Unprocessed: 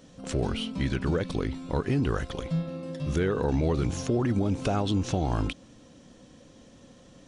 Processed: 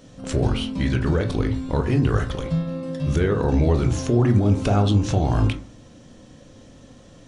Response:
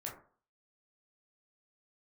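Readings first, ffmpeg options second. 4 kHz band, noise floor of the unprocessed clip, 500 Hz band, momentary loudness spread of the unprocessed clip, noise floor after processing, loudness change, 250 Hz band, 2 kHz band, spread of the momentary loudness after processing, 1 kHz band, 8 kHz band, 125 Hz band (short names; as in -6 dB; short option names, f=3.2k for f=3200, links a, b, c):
+4.0 dB, -54 dBFS, +5.5 dB, 6 LU, -48 dBFS, +7.0 dB, +6.0 dB, +5.0 dB, 7 LU, +5.0 dB, +4.0 dB, +9.0 dB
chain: -filter_complex "[0:a]asplit=2[a][b];[1:a]atrim=start_sample=2205,lowshelf=f=110:g=10.5[c];[b][c]afir=irnorm=-1:irlink=0,volume=0.5dB[d];[a][d]amix=inputs=2:normalize=0"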